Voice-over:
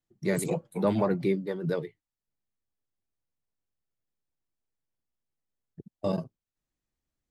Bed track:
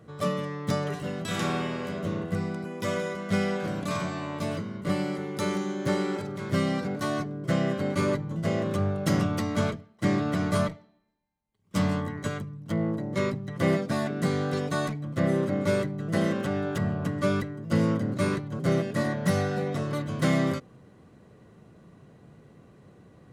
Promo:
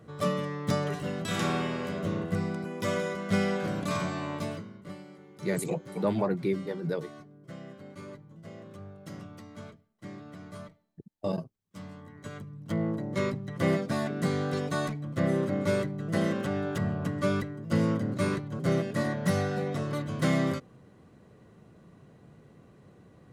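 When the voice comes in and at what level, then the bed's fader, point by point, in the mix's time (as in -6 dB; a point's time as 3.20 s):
5.20 s, -2.0 dB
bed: 4.34 s -0.5 dB
5.04 s -18.5 dB
11.97 s -18.5 dB
12.61 s -2 dB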